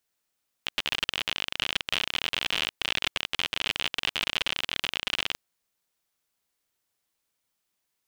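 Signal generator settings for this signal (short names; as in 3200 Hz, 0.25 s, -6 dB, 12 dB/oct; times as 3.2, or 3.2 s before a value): random clicks 56/s -10.5 dBFS 4.70 s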